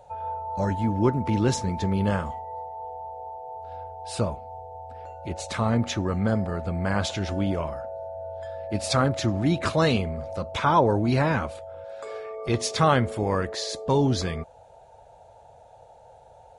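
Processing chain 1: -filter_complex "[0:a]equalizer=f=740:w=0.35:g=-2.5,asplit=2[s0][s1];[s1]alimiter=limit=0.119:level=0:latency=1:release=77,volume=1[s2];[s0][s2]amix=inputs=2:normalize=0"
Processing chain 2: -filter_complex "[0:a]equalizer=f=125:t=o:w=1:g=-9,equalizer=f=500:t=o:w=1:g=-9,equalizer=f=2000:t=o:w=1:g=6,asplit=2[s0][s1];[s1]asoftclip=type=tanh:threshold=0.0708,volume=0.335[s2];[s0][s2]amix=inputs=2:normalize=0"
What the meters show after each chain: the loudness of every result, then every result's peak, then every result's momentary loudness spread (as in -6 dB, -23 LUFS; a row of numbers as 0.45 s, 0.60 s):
-22.5 LUFS, -27.0 LUFS; -7.5 dBFS, -7.0 dBFS; 15 LU, 16 LU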